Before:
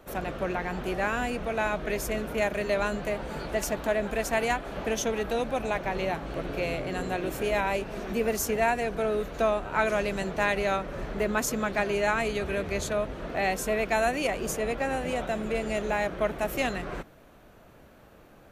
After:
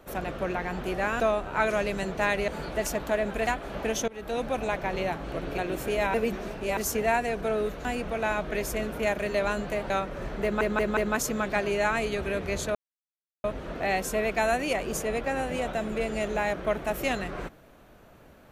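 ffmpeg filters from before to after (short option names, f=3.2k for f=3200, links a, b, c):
-filter_complex "[0:a]asplit=14[a][b][c][d][e][f][g][h][i][j][k][l][m][n];[a]atrim=end=1.202[o];[b]atrim=start=9.388:end=10.672[p];[c]atrim=start=3.248:end=4.242[q];[d]atrim=start=4.488:end=5.1,asetpts=PTS-STARTPTS,afade=t=out:st=0.608:d=0.004:c=hsin:silence=0.0707946[r];[e]atrim=start=5.1:end=6.602,asetpts=PTS-STARTPTS,afade=t=in:d=0.35:silence=0.0707946[s];[f]atrim=start=7.118:end=7.682[t];[g]atrim=start=7.678:end=8.312,asetpts=PTS-STARTPTS,areverse[u];[h]atrim=start=8.308:end=9.392[v];[i]atrim=start=1.198:end=3.252[w];[j]atrim=start=10.668:end=11.382[x];[k]atrim=start=11.198:end=11.382[y];[l]atrim=start=11.198:end=11.382[z];[m]atrim=start=11.198:end=12.98,asetpts=PTS-STARTPTS,afade=t=out:st=1.778:d=0.004:c=hsin,apad=pad_dur=0.69[aa];[n]atrim=start=12.98,asetpts=PTS-STARTPTS,afade=t=in:d=0.004:c=hsin[ab];[o][p]acrossfade=d=0.004:c1=hsin:c2=hsin[ac];[ac][q]acrossfade=d=0.004:c1=hsin:c2=hsin[ad];[r][s]concat=n=2:v=0:a=1[ae];[ad][ae]acrossfade=d=0.004:c1=hsin:c2=hsin[af];[af][t]acrossfade=d=0.004:c1=hsin:c2=hsin[ag];[ag][u]acrossfade=d=0.004:c1=hsin:c2=hsin[ah];[ah][v]acrossfade=d=0.004:c1=hsin:c2=hsin[ai];[ai][w]acrossfade=d=0.004:c1=hsin:c2=hsin[aj];[aj][x]acrossfade=d=0.004:c1=hsin:c2=hsin[ak];[ak][y]acrossfade=d=0.004:c1=hsin:c2=hsin[al];[al][z]acrossfade=d=0.004:c1=hsin:c2=hsin[am];[aa][ab]concat=n=2:v=0:a=1[an];[am][an]acrossfade=d=0.004:c1=hsin:c2=hsin"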